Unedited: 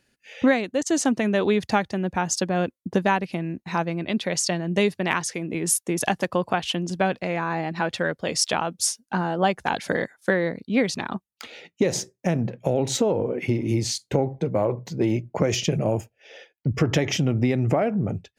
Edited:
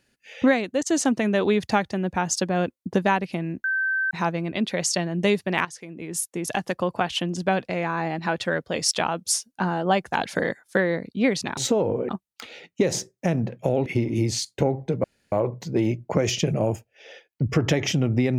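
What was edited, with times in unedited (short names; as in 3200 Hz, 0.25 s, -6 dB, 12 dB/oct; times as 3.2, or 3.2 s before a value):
3.64 add tone 1550 Hz -21 dBFS 0.47 s
5.18–6.66 fade in linear, from -13 dB
12.87–13.39 move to 11.1
14.57 insert room tone 0.28 s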